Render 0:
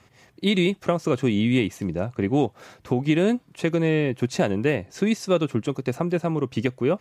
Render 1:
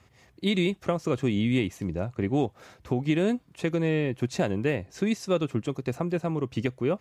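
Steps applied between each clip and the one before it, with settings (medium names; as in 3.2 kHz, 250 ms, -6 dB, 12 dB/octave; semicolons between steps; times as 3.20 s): peaking EQ 64 Hz +10 dB 0.88 oct; trim -4.5 dB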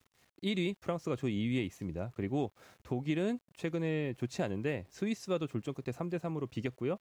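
small samples zeroed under -53.5 dBFS; trim -8 dB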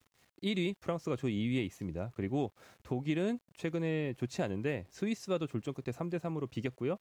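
vibrato 0.8 Hz 20 cents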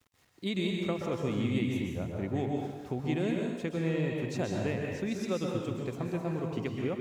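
plate-style reverb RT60 1.2 s, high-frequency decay 0.9×, pre-delay 115 ms, DRR 0 dB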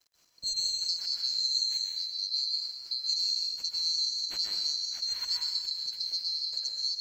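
split-band scrambler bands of 4 kHz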